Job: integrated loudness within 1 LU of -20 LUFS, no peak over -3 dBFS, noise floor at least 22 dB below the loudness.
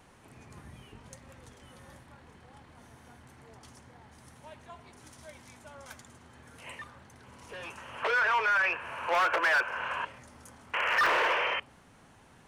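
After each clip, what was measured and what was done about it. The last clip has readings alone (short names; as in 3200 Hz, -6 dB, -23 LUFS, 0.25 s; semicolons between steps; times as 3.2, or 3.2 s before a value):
clipped 0.7%; flat tops at -21.5 dBFS; dropouts 3; longest dropout 1.6 ms; loudness -28.0 LUFS; peak -21.5 dBFS; loudness target -20.0 LUFS
-> clip repair -21.5 dBFS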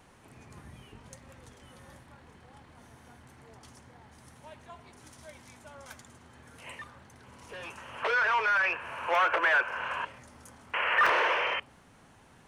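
clipped 0.0%; dropouts 3; longest dropout 1.6 ms
-> interpolate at 7.53/9.15/11.06, 1.6 ms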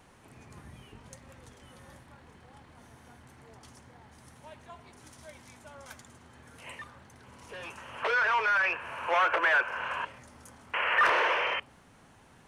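dropouts 0; loudness -27.0 LUFS; peak -13.0 dBFS; loudness target -20.0 LUFS
-> gain +7 dB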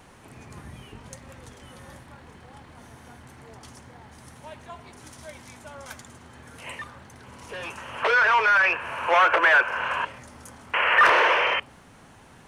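loudness -20.0 LUFS; peak -6.0 dBFS; noise floor -51 dBFS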